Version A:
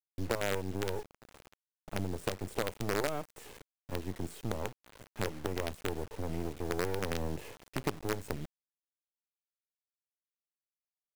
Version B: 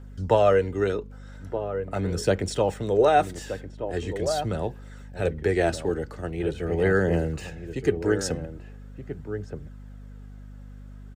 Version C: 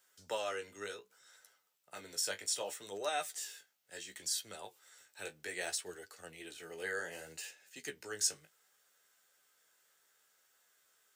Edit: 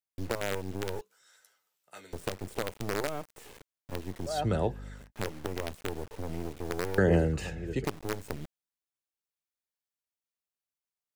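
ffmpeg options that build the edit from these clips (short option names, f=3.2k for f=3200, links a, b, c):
-filter_complex "[1:a]asplit=2[a][b];[0:a]asplit=4[c][d][e][f];[c]atrim=end=1.012[g];[2:a]atrim=start=1.008:end=2.132[h];[d]atrim=start=2.128:end=4.47[i];[a]atrim=start=4.23:end=5.12[j];[e]atrim=start=4.88:end=6.982[k];[b]atrim=start=6.978:end=7.852[l];[f]atrim=start=7.848[m];[g][h]acrossfade=d=0.004:c1=hsin:c2=hsin[n];[n][i]acrossfade=d=0.004:c1=hsin:c2=hsin[o];[o][j]acrossfade=d=0.24:c1=tri:c2=tri[p];[p][k]acrossfade=d=0.24:c1=tri:c2=tri[q];[q][l]acrossfade=d=0.004:c1=hsin:c2=hsin[r];[r][m]acrossfade=d=0.004:c1=hsin:c2=hsin"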